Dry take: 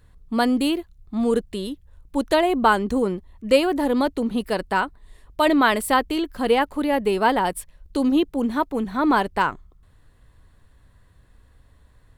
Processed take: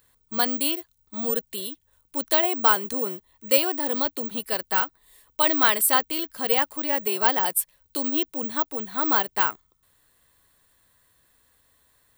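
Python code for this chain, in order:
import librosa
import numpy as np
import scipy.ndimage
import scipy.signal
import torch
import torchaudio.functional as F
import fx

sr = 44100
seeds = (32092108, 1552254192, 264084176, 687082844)

y = fx.riaa(x, sr, side='recording')
y = (np.kron(scipy.signal.resample_poly(y, 1, 2), np.eye(2)[0]) * 2)[:len(y)]
y = y * 10.0 ** (-4.5 / 20.0)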